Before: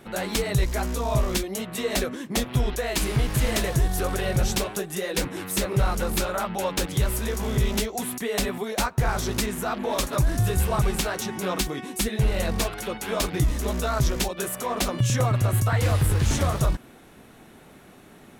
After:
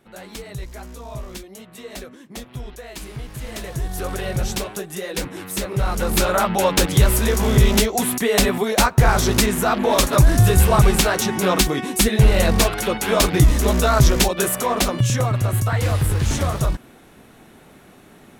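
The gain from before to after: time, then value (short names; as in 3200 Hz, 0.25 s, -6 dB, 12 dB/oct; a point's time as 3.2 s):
3.39 s -9.5 dB
4.09 s 0 dB
5.76 s 0 dB
6.31 s +9 dB
14.5 s +9 dB
15.25 s +2 dB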